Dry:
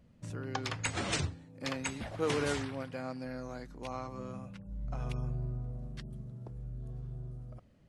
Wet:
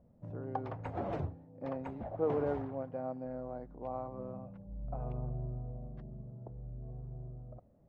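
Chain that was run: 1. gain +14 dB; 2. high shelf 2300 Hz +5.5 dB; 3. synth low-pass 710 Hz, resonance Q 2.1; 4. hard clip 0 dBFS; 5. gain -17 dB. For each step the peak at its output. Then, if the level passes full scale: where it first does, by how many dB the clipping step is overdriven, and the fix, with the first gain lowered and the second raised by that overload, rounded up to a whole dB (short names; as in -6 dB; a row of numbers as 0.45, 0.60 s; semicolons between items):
-4.5, -0.5, -3.5, -3.5, -20.5 dBFS; no overload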